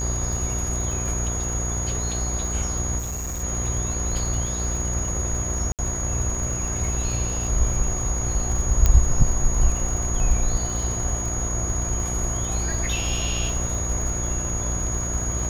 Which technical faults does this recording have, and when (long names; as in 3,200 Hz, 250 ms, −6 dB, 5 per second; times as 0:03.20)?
mains buzz 60 Hz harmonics 39 −28 dBFS
surface crackle 56 per second −30 dBFS
whistle 6,700 Hz −28 dBFS
0:02.98–0:03.44: clipping −26.5 dBFS
0:05.72–0:05.79: drop-out 68 ms
0:08.86: click −5 dBFS